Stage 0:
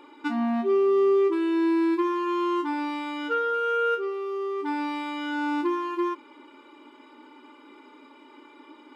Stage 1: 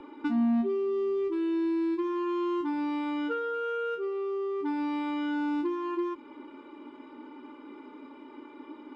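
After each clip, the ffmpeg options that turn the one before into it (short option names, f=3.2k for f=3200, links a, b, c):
-filter_complex "[0:a]aemphasis=mode=reproduction:type=riaa,acrossover=split=180|3000[a][b][c];[b]acompressor=threshold=-30dB:ratio=6[d];[a][d][c]amix=inputs=3:normalize=0"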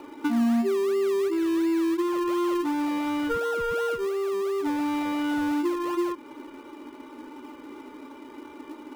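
-filter_complex "[0:a]lowshelf=f=190:g=-10.5,asplit=2[a][b];[b]acrusher=samples=25:mix=1:aa=0.000001:lfo=1:lforange=15:lforate=2.8,volume=-9dB[c];[a][c]amix=inputs=2:normalize=0,volume=4.5dB"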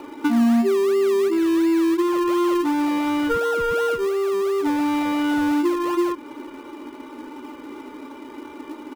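-filter_complex "[0:a]asplit=2[a][b];[b]adelay=758,volume=-29dB,highshelf=f=4k:g=-17.1[c];[a][c]amix=inputs=2:normalize=0,volume=5.5dB"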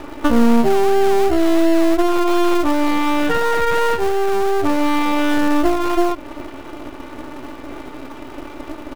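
-af "aeval=exprs='max(val(0),0)':c=same,volume=8.5dB"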